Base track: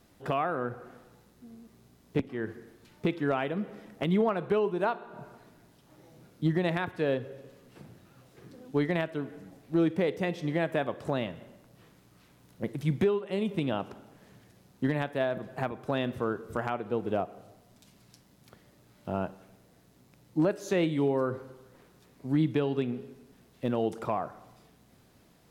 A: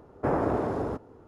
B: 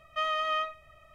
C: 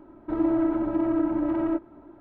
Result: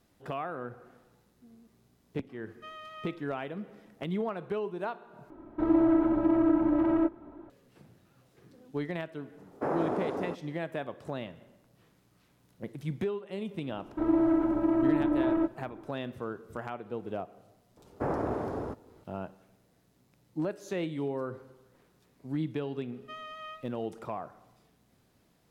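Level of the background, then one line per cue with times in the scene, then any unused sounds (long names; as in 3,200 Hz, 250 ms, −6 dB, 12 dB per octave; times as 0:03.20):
base track −6.5 dB
0:02.46: mix in B −16 dB
0:05.30: overwrite with C
0:09.38: mix in A −4 dB + high-pass filter 200 Hz
0:13.69: mix in C −1.5 dB
0:17.77: mix in A −5 dB
0:22.92: mix in B −14 dB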